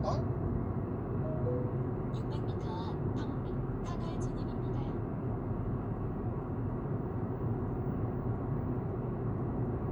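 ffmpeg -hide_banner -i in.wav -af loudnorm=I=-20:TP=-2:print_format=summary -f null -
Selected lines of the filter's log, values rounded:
Input Integrated:    -35.9 LUFS
Input True Peak:     -21.3 dBTP
Input LRA:             1.2 LU
Input Threshold:     -45.9 LUFS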